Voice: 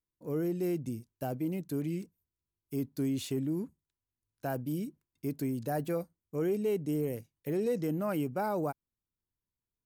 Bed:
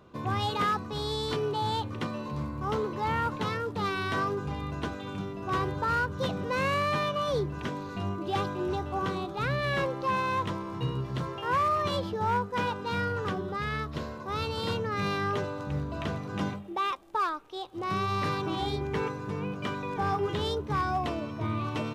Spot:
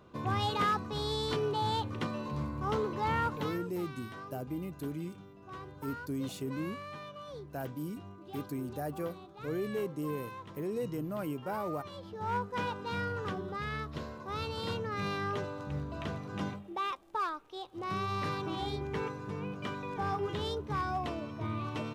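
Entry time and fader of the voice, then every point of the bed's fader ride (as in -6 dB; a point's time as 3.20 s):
3.10 s, -4.5 dB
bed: 3.25 s -2 dB
3.88 s -16.5 dB
11.94 s -16.5 dB
12.36 s -5 dB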